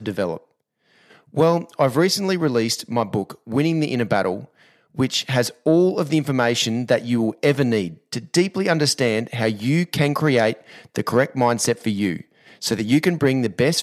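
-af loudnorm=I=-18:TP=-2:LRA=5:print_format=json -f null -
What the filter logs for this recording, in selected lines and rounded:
"input_i" : "-20.5",
"input_tp" : "-3.1",
"input_lra" : "1.5",
"input_thresh" : "-31.0",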